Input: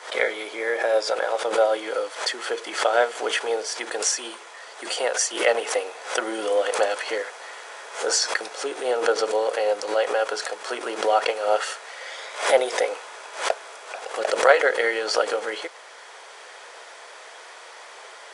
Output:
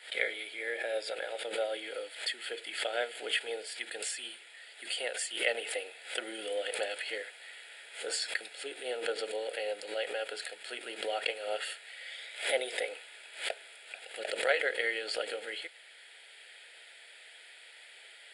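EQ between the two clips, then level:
dynamic equaliser 480 Hz, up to +6 dB, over −32 dBFS, Q 0.81
guitar amp tone stack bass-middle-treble 5-5-5
phaser with its sweep stopped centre 2,600 Hz, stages 4
+4.0 dB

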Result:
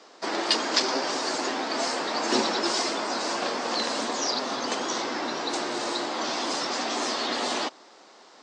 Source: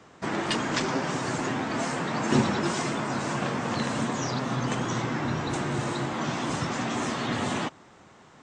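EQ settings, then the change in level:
high-pass filter 270 Hz 24 dB per octave
parametric band 640 Hz +5 dB 1.6 octaves
parametric band 4,700 Hz +15 dB 0.83 octaves
−2.0 dB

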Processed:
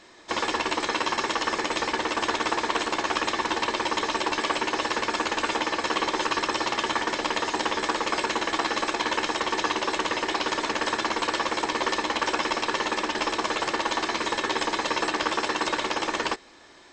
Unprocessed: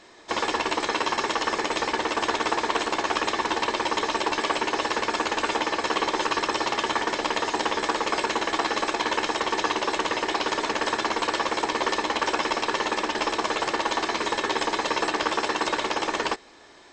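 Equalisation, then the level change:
parametric band 730 Hz −2.5 dB
notch filter 430 Hz, Q 12
0.0 dB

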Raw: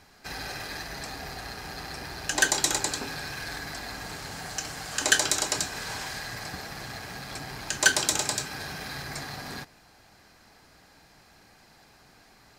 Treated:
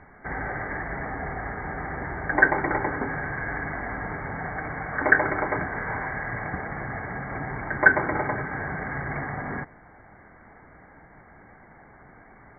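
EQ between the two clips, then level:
linear-phase brick-wall low-pass 2,300 Hz
high-frequency loss of the air 140 metres
+8.0 dB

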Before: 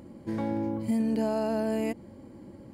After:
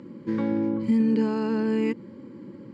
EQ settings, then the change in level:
high-pass filter 130 Hz 24 dB per octave
Butterworth band-reject 710 Hz, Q 1.9
high-frequency loss of the air 140 metres
+6.0 dB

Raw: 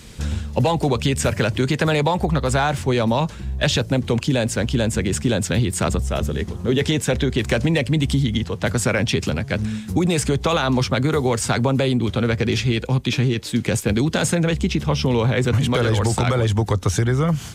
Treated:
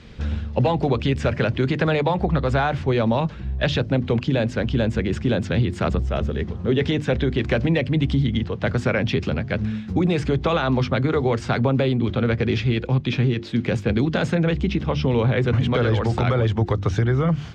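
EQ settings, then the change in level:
high-frequency loss of the air 230 metres
parametric band 940 Hz −3 dB 0.26 octaves
mains-hum notches 50/100/150/200/250/300/350 Hz
0.0 dB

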